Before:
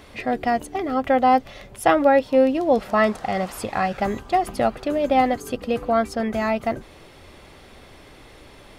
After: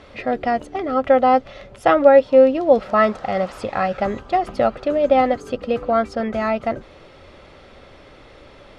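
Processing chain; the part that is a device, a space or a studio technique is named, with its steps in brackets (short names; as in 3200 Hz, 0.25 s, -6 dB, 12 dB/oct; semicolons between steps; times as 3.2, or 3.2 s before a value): inside a cardboard box (LPF 5200 Hz 12 dB/oct; small resonant body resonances 550/1300 Hz, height 7 dB, ringing for 25 ms)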